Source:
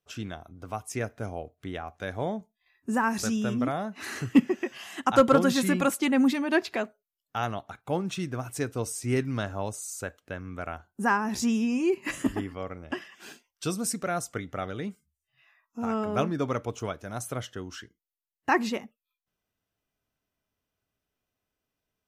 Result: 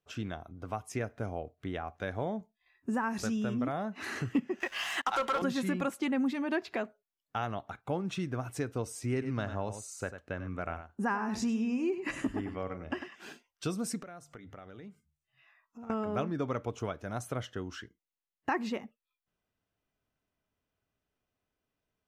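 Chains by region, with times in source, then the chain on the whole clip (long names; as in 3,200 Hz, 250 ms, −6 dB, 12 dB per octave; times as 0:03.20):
0:04.60–0:05.42: high-pass filter 800 Hz + downward compressor 1.5 to 1, threshold −31 dBFS + leveller curve on the samples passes 3
0:09.12–0:13.17: low-pass filter 11,000 Hz + notch filter 3,300 Hz, Q 14 + single-tap delay 96 ms −11 dB
0:14.03–0:15.90: mains-hum notches 50/100/150 Hz + downward compressor 4 to 1, threshold −47 dBFS
whole clip: high-shelf EQ 5,000 Hz −10.5 dB; downward compressor 2.5 to 1, threshold −31 dBFS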